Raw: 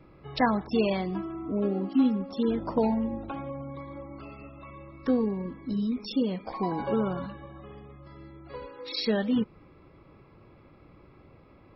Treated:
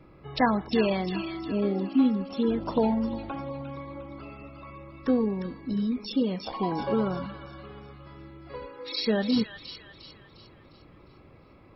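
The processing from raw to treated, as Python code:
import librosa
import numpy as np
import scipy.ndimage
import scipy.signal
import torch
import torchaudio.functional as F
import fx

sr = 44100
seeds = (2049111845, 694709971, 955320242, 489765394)

y = fx.echo_wet_highpass(x, sr, ms=354, feedback_pct=45, hz=1900.0, wet_db=-4.0)
y = y * librosa.db_to_amplitude(1.0)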